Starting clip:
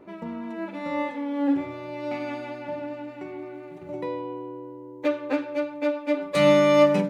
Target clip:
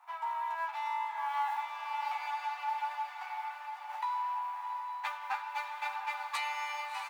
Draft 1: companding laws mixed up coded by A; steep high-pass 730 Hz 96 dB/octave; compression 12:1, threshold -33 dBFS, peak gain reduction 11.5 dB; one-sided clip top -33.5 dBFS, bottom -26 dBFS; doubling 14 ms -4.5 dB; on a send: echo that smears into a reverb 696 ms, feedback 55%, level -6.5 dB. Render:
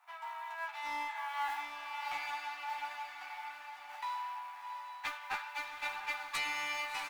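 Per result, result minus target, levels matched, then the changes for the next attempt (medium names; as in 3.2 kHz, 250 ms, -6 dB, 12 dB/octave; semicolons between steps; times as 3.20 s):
one-sided clip: distortion +20 dB; 1 kHz band -2.5 dB
change: one-sided clip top -22.5 dBFS, bottom -26 dBFS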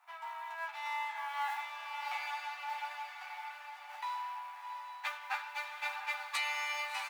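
1 kHz band -3.0 dB
add after steep high-pass: peaking EQ 930 Hz +9.5 dB 0.79 oct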